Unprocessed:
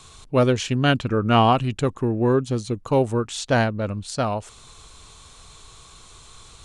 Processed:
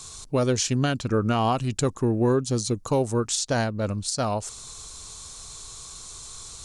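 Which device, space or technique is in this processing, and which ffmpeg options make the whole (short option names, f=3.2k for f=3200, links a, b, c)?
over-bright horn tweeter: -af "highshelf=f=4k:t=q:w=1.5:g=8.5,alimiter=limit=-13.5dB:level=0:latency=1:release=276"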